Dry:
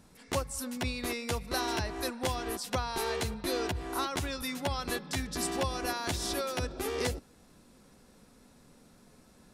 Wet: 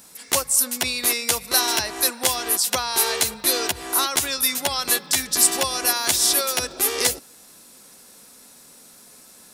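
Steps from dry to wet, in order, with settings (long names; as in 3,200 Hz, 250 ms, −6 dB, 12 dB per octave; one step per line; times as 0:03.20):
RIAA equalisation recording
level +8 dB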